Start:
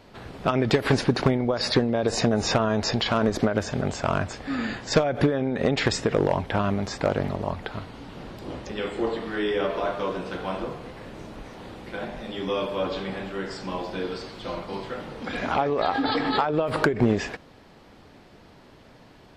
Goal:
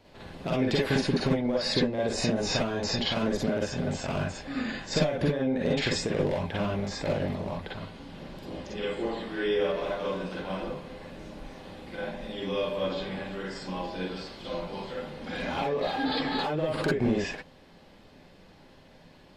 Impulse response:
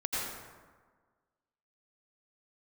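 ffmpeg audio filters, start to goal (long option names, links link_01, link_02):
-filter_complex "[0:a]equalizer=frequency=1300:width_type=o:width=0.66:gain=-4,acrossover=split=580|1700[link_01][link_02][link_03];[link_02]volume=31dB,asoftclip=hard,volume=-31dB[link_04];[link_01][link_04][link_03]amix=inputs=3:normalize=0[link_05];[1:a]atrim=start_sample=2205,afade=type=out:start_time=0.18:duration=0.01,atrim=end_sample=8379,asetrate=88200,aresample=44100[link_06];[link_05][link_06]afir=irnorm=-1:irlink=0"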